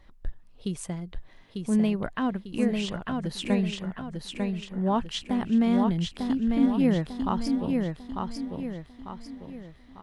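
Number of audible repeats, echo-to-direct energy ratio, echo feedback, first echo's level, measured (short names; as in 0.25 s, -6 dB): 5, -3.0 dB, 42%, -4.0 dB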